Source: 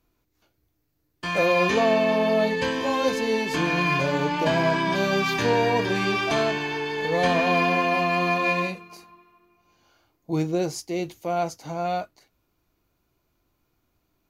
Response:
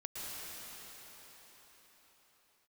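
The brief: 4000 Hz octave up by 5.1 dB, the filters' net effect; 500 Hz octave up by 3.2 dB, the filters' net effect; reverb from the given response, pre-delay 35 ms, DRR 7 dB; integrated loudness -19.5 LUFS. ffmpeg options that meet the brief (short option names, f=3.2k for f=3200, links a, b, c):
-filter_complex "[0:a]equalizer=f=500:t=o:g=4,equalizer=f=4k:t=o:g=6.5,asplit=2[a][b];[1:a]atrim=start_sample=2205,adelay=35[c];[b][c]afir=irnorm=-1:irlink=0,volume=-8.5dB[d];[a][d]amix=inputs=2:normalize=0,volume=1dB"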